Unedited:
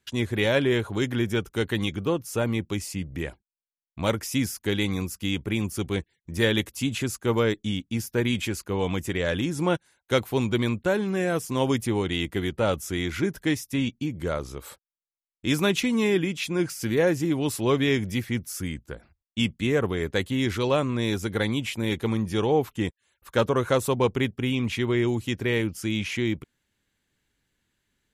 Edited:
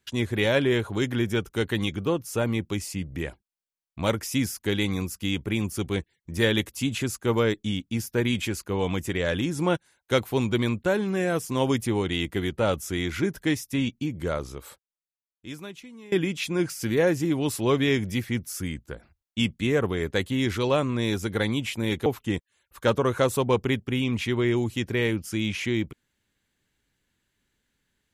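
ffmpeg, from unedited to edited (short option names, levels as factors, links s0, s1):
-filter_complex "[0:a]asplit=3[s0][s1][s2];[s0]atrim=end=16.12,asetpts=PTS-STARTPTS,afade=t=out:st=14.43:d=1.69:c=qua:silence=0.0749894[s3];[s1]atrim=start=16.12:end=22.062,asetpts=PTS-STARTPTS,afade=t=in:d=0.004:c=hsin:silence=0.0749894[s4];[s2]atrim=start=22.568[s5];[s3][s4]concat=n=2:v=0:a=1[s6];[s6][s5]acrossfade=d=0.004:c1=hsin:c2=hsin"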